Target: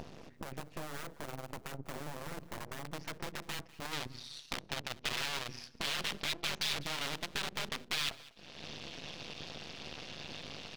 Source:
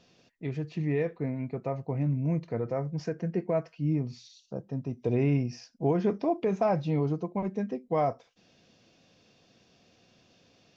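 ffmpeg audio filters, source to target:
-af "acompressor=mode=upward:threshold=-28dB:ratio=2.5,highshelf=f=2.5k:g=-11.5,aeval=exprs='(mod(25.1*val(0)+1,2)-1)/25.1':c=same,bandreject=f=60:t=h:w=6,bandreject=f=120:t=h:w=6,bandreject=f=180:t=h:w=6,bandreject=f=240:t=h:w=6,bandreject=f=300:t=h:w=6,bandreject=f=360:t=h:w=6,bandreject=f=420:t=h:w=6,aeval=exprs='max(val(0),0)':c=same,tremolo=f=150:d=0.75,acompressor=threshold=-41dB:ratio=4,asetnsamples=n=441:p=0,asendcmd='2.84 equalizer g 4;3.93 equalizer g 13',equalizer=f=3.6k:t=o:w=2:g=-3,aecho=1:1:198|396:0.0944|0.016,volume=3.5dB"

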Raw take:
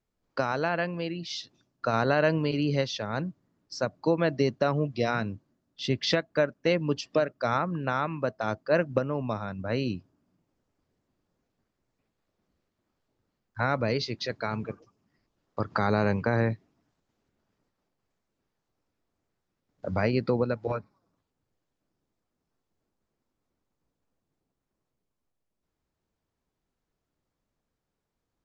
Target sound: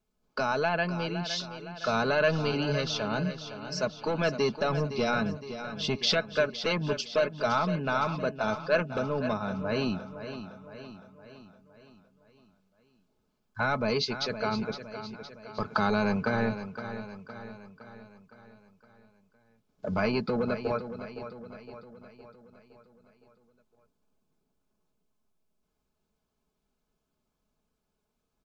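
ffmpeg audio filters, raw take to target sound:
-filter_complex "[0:a]acrossover=split=1100[a][b];[a]asoftclip=type=tanh:threshold=-25.5dB[c];[c][b]amix=inputs=2:normalize=0,bandreject=f=1.9k:w=5.4,aecho=1:1:4.7:0.51,aecho=1:1:513|1026|1539|2052|2565|3078:0.282|0.149|0.0792|0.042|0.0222|0.0118,volume=1.5dB"

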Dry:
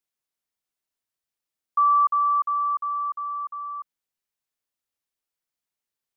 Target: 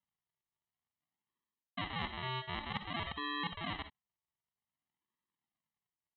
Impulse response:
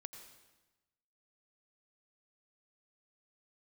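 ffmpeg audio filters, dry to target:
-filter_complex "[0:a]aemphasis=mode=production:type=bsi,aresample=8000,acrusher=samples=21:mix=1:aa=0.000001:lfo=1:lforange=21:lforate=0.53,aresample=44100,highpass=f=1.1k:p=1,aecho=1:1:1:0.67,areverse,acompressor=threshold=-41dB:ratio=10,areverse[a];[1:a]atrim=start_sample=2205,atrim=end_sample=6174,asetrate=79380,aresample=44100[b];[a][b]afir=irnorm=-1:irlink=0,volume=17.5dB"

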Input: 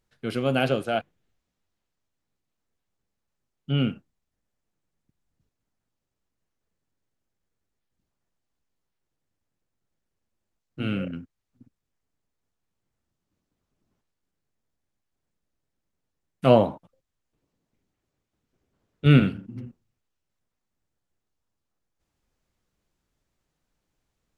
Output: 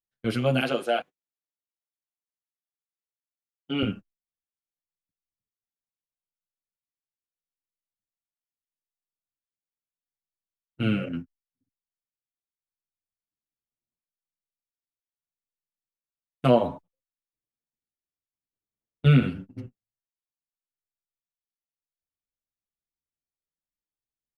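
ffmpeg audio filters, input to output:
-filter_complex "[0:a]agate=range=-28dB:threshold=-36dB:ratio=16:detection=peak,asettb=1/sr,asplit=3[a][b][c];[a]atrim=end=0.604[d];[b]atrim=start=0.6:end=3.83,asetpts=PTS-STARTPTS,afade=t=in:d=0.004:c=qsin,afade=t=out:st=3.226:d=0.004:c=qsin,highpass=280[e];[c]atrim=start=3.826[f];[d][e]acrossfade=d=0.004:c1=hsin:c2=qsin[g];[g][f]acrossfade=d=0.004:c1=qsin:c2=hsin,acompressor=threshold=-23dB:ratio=2,asplit=2[h][i];[i]adelay=7.4,afreqshift=0.76[j];[h][j]amix=inputs=2:normalize=1,volume=5.5dB"

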